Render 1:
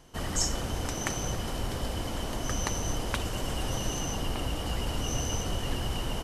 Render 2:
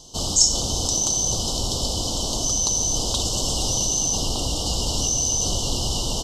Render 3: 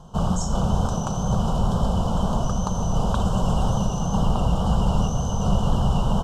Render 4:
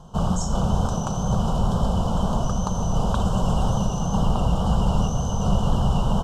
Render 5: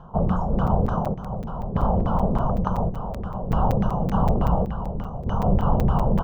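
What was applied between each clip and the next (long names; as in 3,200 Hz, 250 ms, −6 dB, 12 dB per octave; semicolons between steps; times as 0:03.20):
Chebyshev band-stop filter 920–4,100 Hz, order 2; flat-topped bell 4,800 Hz +14 dB; in parallel at −2 dB: compressor whose output falls as the input rises −28 dBFS, ratio −0.5
drawn EQ curve 110 Hz 0 dB, 190 Hz +9 dB, 300 Hz −13 dB, 420 Hz −5 dB, 920 Hz +1 dB, 1,600 Hz +9 dB, 4,400 Hz −28 dB, 10,000 Hz −20 dB; tape wow and flutter 24 cents; level +6 dB
no processing that can be heard
auto-filter low-pass saw down 3.4 Hz 330–2,000 Hz; square-wave tremolo 0.57 Hz, depth 65%, duty 65%; regular buffer underruns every 0.19 s, samples 256, zero, from 0:00.67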